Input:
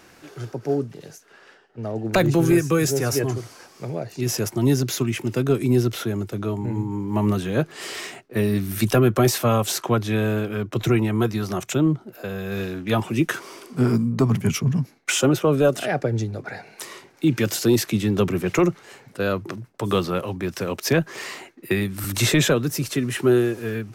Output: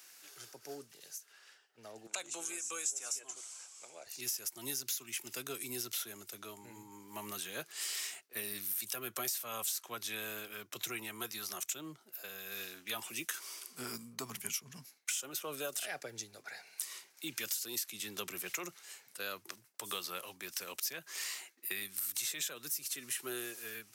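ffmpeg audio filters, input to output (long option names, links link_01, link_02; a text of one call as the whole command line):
ffmpeg -i in.wav -filter_complex "[0:a]aderivative,acompressor=threshold=-35dB:ratio=12,asettb=1/sr,asplit=3[link_01][link_02][link_03];[link_01]atrim=end=2.074[link_04];[link_02]atrim=start=2.07:end=4.07,asetpts=PTS-STARTPTS,afade=type=in:duration=0.004:curve=qsin,afade=type=out:start_time=1.996:duration=0.004:curve=qsin,highpass=380,equalizer=frequency=410:width_type=q:width=4:gain=-5,equalizer=frequency=1800:width_type=q:width=4:gain=-7,equalizer=frequency=4700:width_type=q:width=4:gain=-8,equalizer=frequency=7600:width_type=q:width=4:gain=9,lowpass=frequency=8900:width=0.5412,lowpass=frequency=8900:width=1.3066[link_05];[link_03]atrim=start=4.066[link_06];[link_04][link_05]acrossfade=duration=0.004:curve1=hsin:curve2=qsin[link_07];[link_07][link_06]acrossfade=duration=0.004:curve1=qsin:curve2=hsin,volume=1dB" out.wav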